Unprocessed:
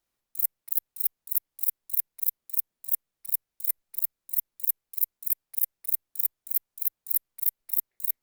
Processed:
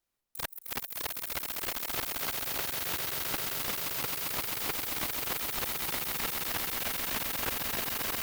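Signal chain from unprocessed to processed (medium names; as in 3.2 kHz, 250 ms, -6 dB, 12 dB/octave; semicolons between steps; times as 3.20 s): echo with a slow build-up 132 ms, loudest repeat 8, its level -6.5 dB; slew-rate limiter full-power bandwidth 340 Hz; trim -2.5 dB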